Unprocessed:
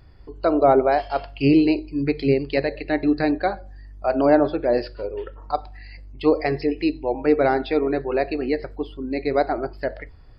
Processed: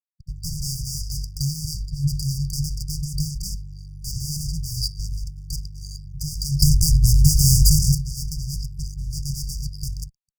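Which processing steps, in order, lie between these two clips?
fuzz box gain 30 dB, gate -39 dBFS; 6.62–7.95 s: tone controls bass +14 dB, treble +14 dB; brick-wall FIR band-stop 170–4600 Hz; trim +1.5 dB

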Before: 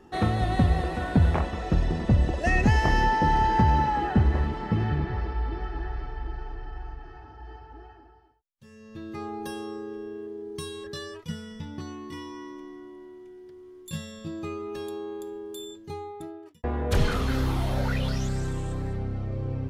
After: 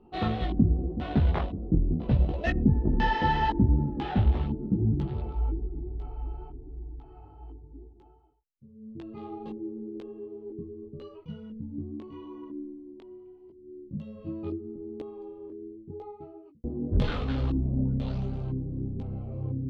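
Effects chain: local Wiener filter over 25 samples; LFO low-pass square 1 Hz 280–3500 Hz; chorus voices 4, 0.79 Hz, delay 18 ms, depth 4.4 ms

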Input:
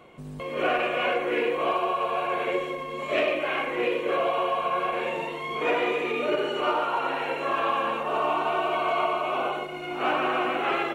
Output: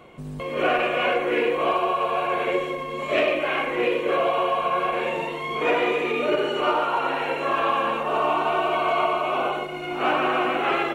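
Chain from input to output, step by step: bass shelf 140 Hz +3.5 dB; trim +3 dB

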